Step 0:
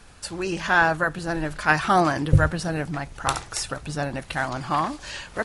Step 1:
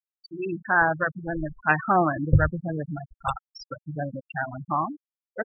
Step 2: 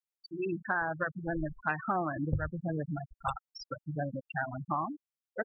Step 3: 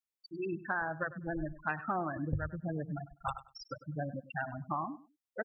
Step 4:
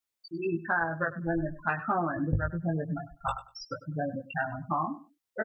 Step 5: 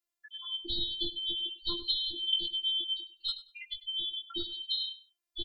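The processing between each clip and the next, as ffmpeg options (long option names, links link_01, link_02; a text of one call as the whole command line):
ffmpeg -i in.wav -af "afftfilt=real='re*gte(hypot(re,im),0.158)':imag='im*gte(hypot(re,im),0.158)':win_size=1024:overlap=0.75,volume=-1.5dB" out.wav
ffmpeg -i in.wav -af "acompressor=threshold=-25dB:ratio=6,volume=-3dB" out.wav
ffmpeg -i in.wav -af "aecho=1:1:99|198:0.15|0.0299,volume=-3dB" out.wav
ffmpeg -i in.wav -filter_complex "[0:a]asplit=2[link_01][link_02];[link_02]adelay=18,volume=-4dB[link_03];[link_01][link_03]amix=inputs=2:normalize=0,volume=4.5dB" out.wav
ffmpeg -i in.wav -af "afftfilt=real='real(if(lt(b,272),68*(eq(floor(b/68),0)*1+eq(floor(b/68),1)*3+eq(floor(b/68),2)*0+eq(floor(b/68),3)*2)+mod(b,68),b),0)':imag='imag(if(lt(b,272),68*(eq(floor(b/68),0)*1+eq(floor(b/68),1)*3+eq(floor(b/68),2)*0+eq(floor(b/68),3)*2)+mod(b,68),b),0)':win_size=2048:overlap=0.75,afftfilt=real='hypot(re,im)*cos(PI*b)':imag='0':win_size=512:overlap=0.75" out.wav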